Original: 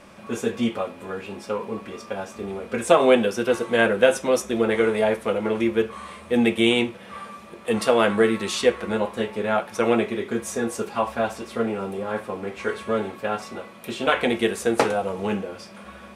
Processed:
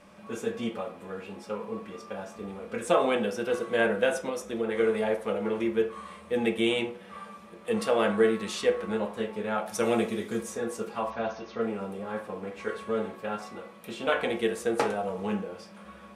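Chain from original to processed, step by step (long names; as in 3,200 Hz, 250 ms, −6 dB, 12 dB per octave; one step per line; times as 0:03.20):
0:04.29–0:04.77: downward compressor 3 to 1, threshold −21 dBFS, peak gain reduction 5 dB
0:09.66–0:10.43: bass and treble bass +5 dB, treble +13 dB
0:11.10–0:11.62: linear-phase brick-wall low-pass 6,700 Hz
on a send: convolution reverb RT60 0.45 s, pre-delay 3 ms, DRR 5 dB
on the sum: level −8 dB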